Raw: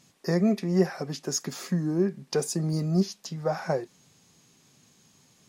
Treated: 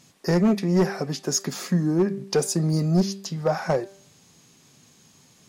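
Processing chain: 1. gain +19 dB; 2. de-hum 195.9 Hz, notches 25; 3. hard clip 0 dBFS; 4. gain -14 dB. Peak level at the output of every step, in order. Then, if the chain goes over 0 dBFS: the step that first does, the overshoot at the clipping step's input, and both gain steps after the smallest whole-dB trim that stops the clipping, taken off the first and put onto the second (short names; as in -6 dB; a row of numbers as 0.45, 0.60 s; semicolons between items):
+9.0, +8.0, 0.0, -14.0 dBFS; step 1, 8.0 dB; step 1 +11 dB, step 4 -6 dB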